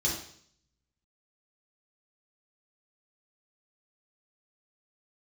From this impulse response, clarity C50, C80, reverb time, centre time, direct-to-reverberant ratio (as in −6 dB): 4.0 dB, 8.5 dB, 0.60 s, 37 ms, −5.0 dB